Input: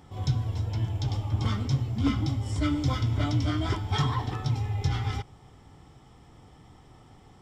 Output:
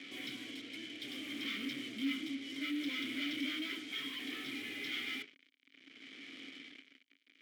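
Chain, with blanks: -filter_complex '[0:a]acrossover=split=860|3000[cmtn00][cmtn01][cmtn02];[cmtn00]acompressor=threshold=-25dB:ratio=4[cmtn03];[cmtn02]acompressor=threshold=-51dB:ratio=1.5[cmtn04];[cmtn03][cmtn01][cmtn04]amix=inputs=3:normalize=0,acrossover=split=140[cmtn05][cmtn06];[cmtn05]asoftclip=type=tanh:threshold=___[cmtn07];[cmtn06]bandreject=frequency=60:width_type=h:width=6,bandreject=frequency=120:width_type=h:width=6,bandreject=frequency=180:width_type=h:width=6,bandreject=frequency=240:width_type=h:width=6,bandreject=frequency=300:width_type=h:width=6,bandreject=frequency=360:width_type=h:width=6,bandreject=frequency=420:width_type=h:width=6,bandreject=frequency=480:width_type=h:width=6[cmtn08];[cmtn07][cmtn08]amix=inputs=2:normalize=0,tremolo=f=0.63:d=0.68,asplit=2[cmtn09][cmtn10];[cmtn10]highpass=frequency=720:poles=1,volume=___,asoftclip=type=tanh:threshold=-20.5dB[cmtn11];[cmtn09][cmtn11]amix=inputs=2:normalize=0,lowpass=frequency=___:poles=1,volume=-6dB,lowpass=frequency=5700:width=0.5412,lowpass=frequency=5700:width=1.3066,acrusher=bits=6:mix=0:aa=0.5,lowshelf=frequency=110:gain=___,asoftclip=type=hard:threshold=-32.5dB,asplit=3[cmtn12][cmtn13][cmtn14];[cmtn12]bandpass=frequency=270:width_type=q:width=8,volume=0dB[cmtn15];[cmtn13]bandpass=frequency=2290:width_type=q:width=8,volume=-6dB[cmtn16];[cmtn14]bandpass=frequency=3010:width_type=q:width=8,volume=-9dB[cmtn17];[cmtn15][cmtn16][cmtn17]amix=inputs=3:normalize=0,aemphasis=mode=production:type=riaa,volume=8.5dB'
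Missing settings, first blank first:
-37.5dB, 25dB, 1100, -8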